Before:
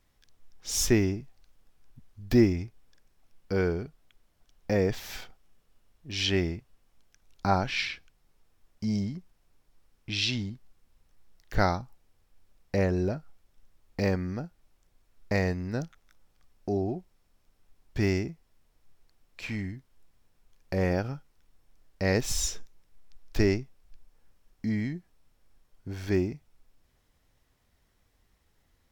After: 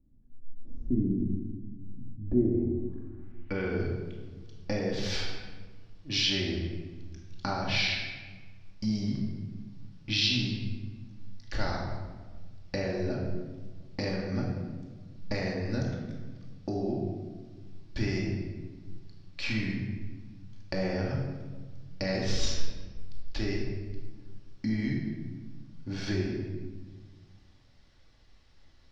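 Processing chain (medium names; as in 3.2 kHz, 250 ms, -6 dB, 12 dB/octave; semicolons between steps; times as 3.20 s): 22.13–23.43 s: median filter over 5 samples; compression 12:1, threshold -31 dBFS, peak gain reduction 16 dB; low-pass sweep 240 Hz -> 4.7 kHz, 2.06–3.86 s; reverberation RT60 1.4 s, pre-delay 3 ms, DRR -3 dB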